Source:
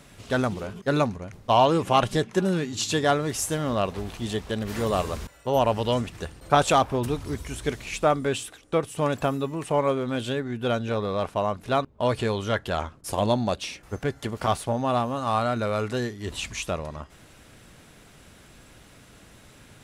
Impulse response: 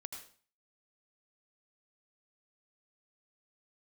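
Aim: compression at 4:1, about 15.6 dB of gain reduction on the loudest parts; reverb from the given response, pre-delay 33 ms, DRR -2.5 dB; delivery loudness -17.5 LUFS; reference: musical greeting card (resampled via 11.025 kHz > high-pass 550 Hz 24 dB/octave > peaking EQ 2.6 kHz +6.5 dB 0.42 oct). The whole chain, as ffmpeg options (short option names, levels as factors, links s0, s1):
-filter_complex "[0:a]acompressor=threshold=0.0224:ratio=4,asplit=2[s0][s1];[1:a]atrim=start_sample=2205,adelay=33[s2];[s1][s2]afir=irnorm=-1:irlink=0,volume=1.88[s3];[s0][s3]amix=inputs=2:normalize=0,aresample=11025,aresample=44100,highpass=f=550:w=0.5412,highpass=f=550:w=1.3066,equalizer=f=2600:t=o:w=0.42:g=6.5,volume=7.08"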